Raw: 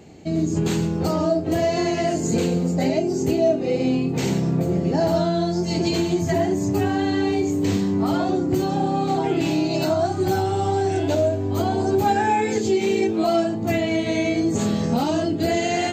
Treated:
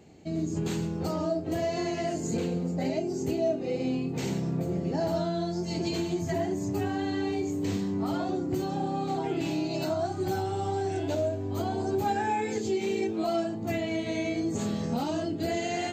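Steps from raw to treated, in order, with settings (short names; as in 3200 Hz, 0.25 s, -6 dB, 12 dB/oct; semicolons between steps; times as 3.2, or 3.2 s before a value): 2.37–2.85 bell 11000 Hz -7 dB 1.9 oct; gain -8.5 dB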